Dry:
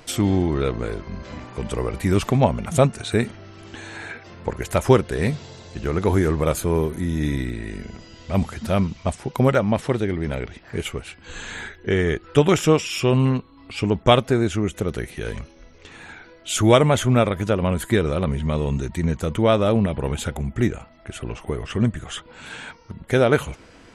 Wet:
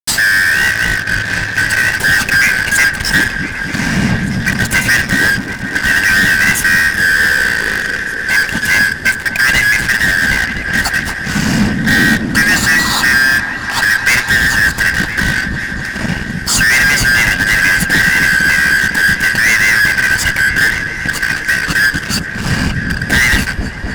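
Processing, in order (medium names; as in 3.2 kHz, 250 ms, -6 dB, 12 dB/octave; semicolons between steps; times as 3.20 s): four frequency bands reordered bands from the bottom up 2143; resonant low shelf 310 Hz +9.5 dB, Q 1.5; de-hum 120.9 Hz, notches 32; in parallel at +1.5 dB: compression, threshold -30 dBFS, peak gain reduction 19.5 dB; on the sum: fuzz box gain 23 dB, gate -30 dBFS; on a send: delay with an opening low-pass 253 ms, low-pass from 400 Hz, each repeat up 1 oct, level -3 dB; on the sum: trim +5 dB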